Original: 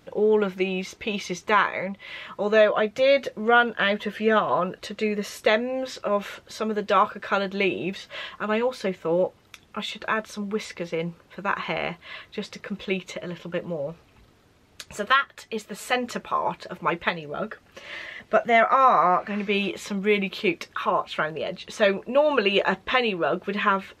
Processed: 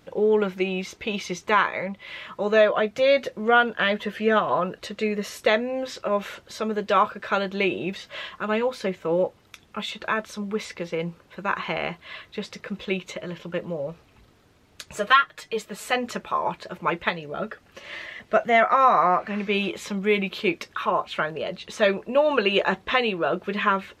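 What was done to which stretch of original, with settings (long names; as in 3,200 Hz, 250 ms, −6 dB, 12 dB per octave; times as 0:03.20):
0:14.96–0:15.65: comb filter 6.5 ms, depth 74%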